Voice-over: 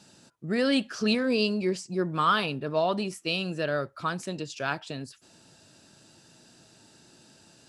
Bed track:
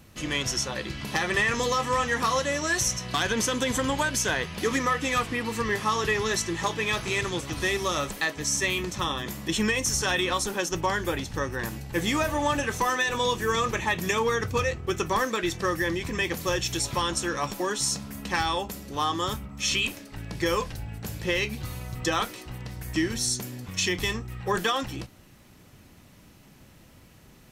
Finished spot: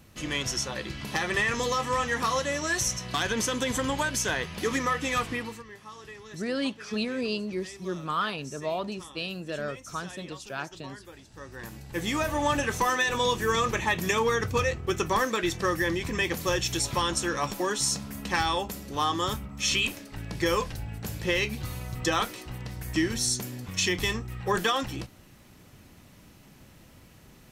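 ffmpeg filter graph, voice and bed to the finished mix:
ffmpeg -i stem1.wav -i stem2.wav -filter_complex "[0:a]adelay=5900,volume=-5dB[link_01];[1:a]volume=17.5dB,afade=type=out:start_time=5.34:duration=0.29:silence=0.133352,afade=type=in:start_time=11.31:duration=1.22:silence=0.105925[link_02];[link_01][link_02]amix=inputs=2:normalize=0" out.wav

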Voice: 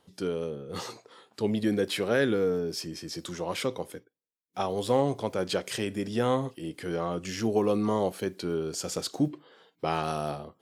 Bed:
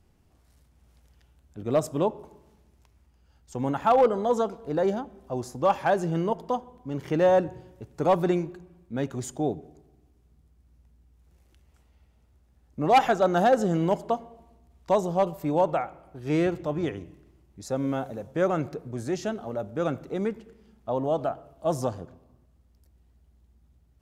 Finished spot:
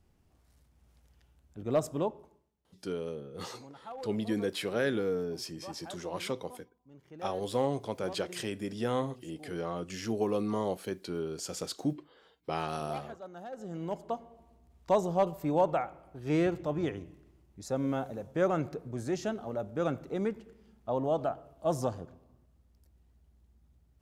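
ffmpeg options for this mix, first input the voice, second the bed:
ffmpeg -i stem1.wav -i stem2.wav -filter_complex "[0:a]adelay=2650,volume=-5dB[link_01];[1:a]volume=15.5dB,afade=type=out:start_time=1.89:duration=0.62:silence=0.112202,afade=type=in:start_time=13.51:duration=1.18:silence=0.1[link_02];[link_01][link_02]amix=inputs=2:normalize=0" out.wav

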